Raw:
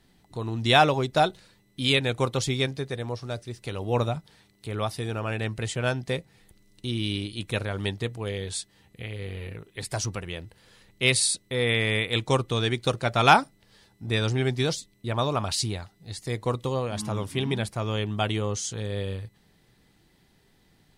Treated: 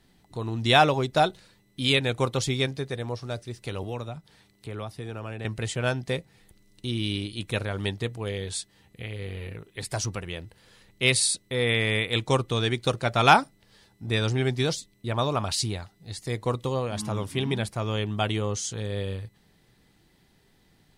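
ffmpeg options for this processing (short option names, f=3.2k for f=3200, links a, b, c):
-filter_complex "[0:a]asettb=1/sr,asplit=3[a][b][c];[a]atrim=end=3.834[d];[b]atrim=start=3.83:end=5.45,asetpts=PTS-STARTPTS,afade=t=in:d=0.004:c=qsin,afade=t=out:st=1.616:d=0.004:c=qsin,acrossover=split=410|1100|2700[e][f][g][h];[e]acompressor=threshold=-36dB:ratio=3[i];[f]acompressor=threshold=-42dB:ratio=3[j];[g]acompressor=threshold=-49dB:ratio=3[k];[h]acompressor=threshold=-54dB:ratio=3[l];[i][j][k][l]amix=inputs=4:normalize=0[m];[c]atrim=start=5.446[n];[d][m]acrossfade=d=0.004:c1=hsin:c2=qsin[o];[o][n]acrossfade=d=0.004:c1=qsin:c2=hsin"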